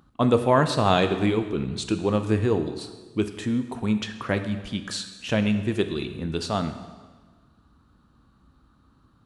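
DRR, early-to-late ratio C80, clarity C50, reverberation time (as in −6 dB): 8.0 dB, 11.5 dB, 10.0 dB, 1.4 s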